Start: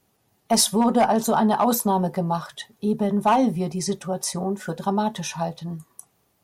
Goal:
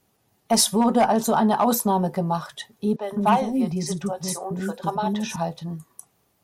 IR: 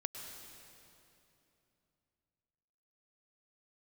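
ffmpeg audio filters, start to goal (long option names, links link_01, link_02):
-filter_complex "[0:a]asettb=1/sr,asplit=3[link_01][link_02][link_03];[link_01]atrim=end=2.964[link_04];[link_02]atrim=start=2.96:end=5.36,asetpts=PTS-STARTPTS,afade=type=in:duration=0.004:curve=qsin,afade=type=out:start_time=2.396:duration=0.004:curve=qsin,acrossover=split=400|5900[link_05][link_06][link_07];[link_07]adelay=50[link_08];[link_05]adelay=160[link_09];[link_09][link_06][link_08]amix=inputs=3:normalize=0,atrim=end_sample=105840[link_10];[link_03]atrim=start=5.356[link_11];[link_04][link_10]acrossfade=duration=0.004:curve1=hsin:curve2=qsin[link_12];[link_12][link_11]acrossfade=duration=0.004:curve1=qsin:curve2=hsin"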